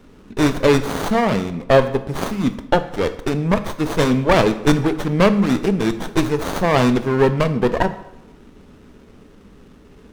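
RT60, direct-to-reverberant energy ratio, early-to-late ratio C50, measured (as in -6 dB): 0.85 s, 10.5 dB, 13.5 dB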